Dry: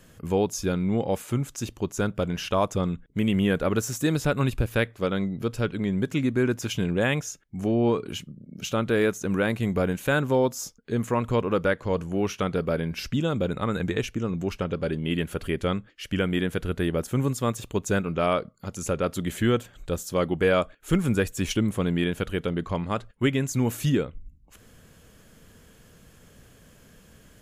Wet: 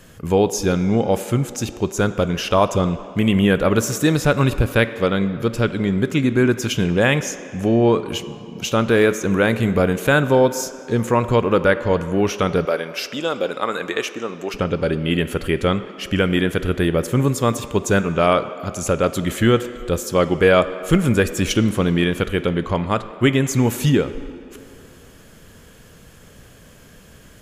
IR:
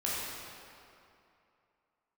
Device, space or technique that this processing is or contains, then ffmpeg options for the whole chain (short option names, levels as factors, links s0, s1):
filtered reverb send: -filter_complex "[0:a]asplit=2[s0][s1];[s1]highpass=f=200:w=0.5412,highpass=f=200:w=1.3066,lowpass=7300[s2];[1:a]atrim=start_sample=2205[s3];[s2][s3]afir=irnorm=-1:irlink=0,volume=0.141[s4];[s0][s4]amix=inputs=2:normalize=0,asettb=1/sr,asplit=3[s5][s6][s7];[s5]atrim=end=12.654[s8];[s6]atrim=start=12.65:end=14.54,asetpts=PTS-STARTPTS,afade=t=in:d=0.004:c=qsin,afade=t=out:st=1.886:d=0.004:c=qsin,highpass=430[s9];[s7]atrim=start=14.536[s10];[s8][s9]acrossfade=d=0.004:c1=hsin:c2=qsin[s11];[s11][s10]acrossfade=d=0.004:c1=qsin:c2=hsin,volume=2.24"